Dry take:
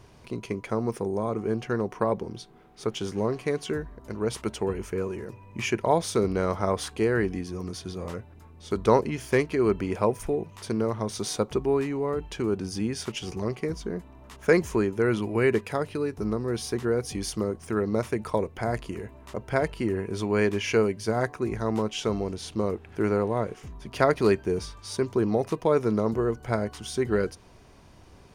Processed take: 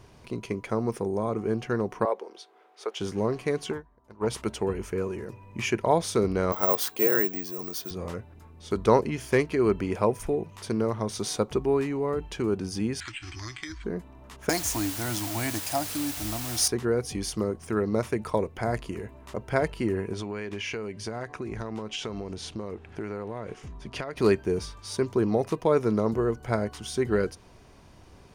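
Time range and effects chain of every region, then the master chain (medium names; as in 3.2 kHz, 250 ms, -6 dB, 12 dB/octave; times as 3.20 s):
2.05–3.00 s: high-pass 430 Hz 24 dB/octave + treble shelf 6.6 kHz -8 dB
3.71–4.27 s: self-modulated delay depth 0.11 ms + peaking EQ 910 Hz +9.5 dB 0.8 oct + upward expansion 2.5:1, over -35 dBFS
6.52–7.91 s: high-pass 140 Hz + tone controls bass -9 dB, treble +4 dB + careless resampling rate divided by 2×, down filtered, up zero stuff
13.00–13.84 s: careless resampling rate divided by 8×, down filtered, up hold + FFT filter 110 Hz 0 dB, 190 Hz -25 dB, 310 Hz 0 dB, 460 Hz -29 dB, 650 Hz -14 dB, 1.7 kHz +12 dB, 4.5 kHz +7 dB, 8.6 kHz +2 dB, 13 kHz -29 dB + compression 2.5:1, threshold -35 dBFS
14.49–16.68 s: FFT filter 100 Hz 0 dB, 200 Hz -13 dB, 300 Hz +4 dB, 420 Hz -29 dB, 690 Hz +7 dB, 1.2 kHz -7 dB, 2.5 kHz -5 dB, 5.6 kHz +14 dB + word length cut 6-bit, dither triangular
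20.13–24.17 s: low-pass 9 kHz + dynamic bell 2.5 kHz, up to +4 dB, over -41 dBFS, Q 0.91 + compression 16:1, threshold -29 dBFS
whole clip: none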